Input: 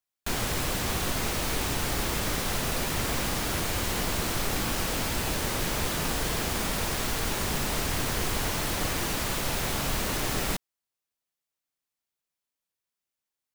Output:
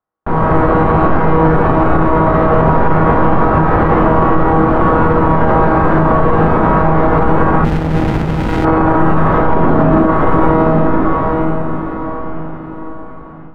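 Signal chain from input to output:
0:09.55–0:10.07: parametric band 270 Hz +11.5 dB 0.97 octaves
Chebyshev low-pass filter 1,200 Hz, order 3
low-shelf EQ 140 Hz −5.5 dB
tuned comb filter 160 Hz, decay 1.3 s, mix 90%
on a send: feedback delay with all-pass diffusion 806 ms, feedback 40%, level −7 dB
on the sum: automatic gain control gain up to 8 dB
boost into a limiter +34.5 dB
0:07.64–0:08.65: windowed peak hold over 65 samples
level −1 dB

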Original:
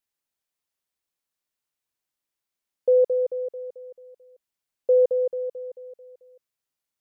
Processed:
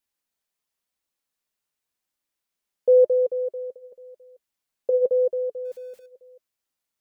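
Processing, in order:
0:05.65–0:06.06: converter with a step at zero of −55 dBFS
flanger 0.91 Hz, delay 3.3 ms, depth 1.8 ms, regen −55%
level +6 dB

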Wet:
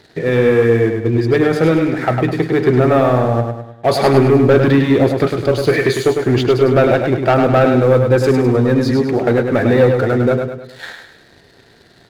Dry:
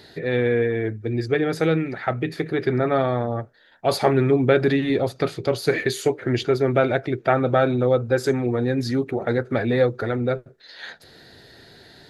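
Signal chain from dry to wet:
high-shelf EQ 3,400 Hz −8 dB
leveller curve on the samples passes 2
repeating echo 103 ms, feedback 45%, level −5.5 dB
level +1.5 dB

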